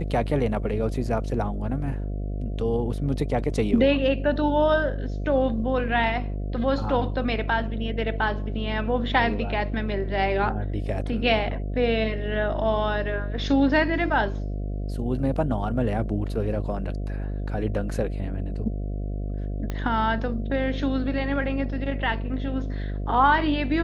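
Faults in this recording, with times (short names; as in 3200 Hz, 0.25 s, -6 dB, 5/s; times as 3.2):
buzz 50 Hz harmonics 14 -29 dBFS
19.7 pop -17 dBFS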